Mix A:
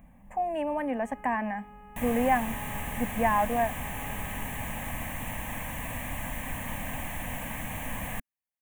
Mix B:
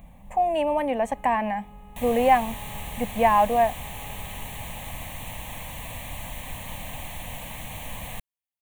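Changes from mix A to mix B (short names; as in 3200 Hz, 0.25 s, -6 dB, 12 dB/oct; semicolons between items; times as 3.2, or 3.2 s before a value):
speech +8.0 dB; master: add fifteen-band EQ 250 Hz -8 dB, 1600 Hz -9 dB, 4000 Hz +11 dB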